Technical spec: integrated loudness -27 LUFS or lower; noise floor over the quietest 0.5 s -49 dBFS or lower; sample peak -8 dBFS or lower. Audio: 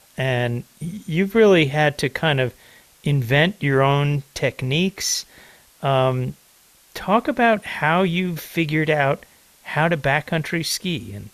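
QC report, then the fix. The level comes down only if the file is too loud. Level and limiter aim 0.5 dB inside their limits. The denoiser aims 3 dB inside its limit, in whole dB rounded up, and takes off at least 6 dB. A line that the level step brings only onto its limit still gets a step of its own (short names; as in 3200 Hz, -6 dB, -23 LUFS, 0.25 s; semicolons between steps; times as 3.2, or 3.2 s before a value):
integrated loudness -20.5 LUFS: fail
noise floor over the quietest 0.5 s -54 dBFS: OK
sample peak -5.5 dBFS: fail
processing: gain -7 dB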